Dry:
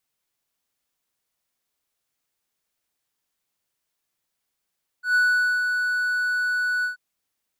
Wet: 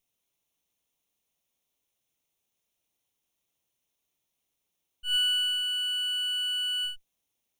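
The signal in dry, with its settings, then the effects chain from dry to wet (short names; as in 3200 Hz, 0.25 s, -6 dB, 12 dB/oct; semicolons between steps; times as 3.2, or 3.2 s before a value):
ADSR triangle 1480 Hz, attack 0.121 s, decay 0.463 s, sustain -5.5 dB, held 1.81 s, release 0.123 s -13.5 dBFS
minimum comb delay 0.31 ms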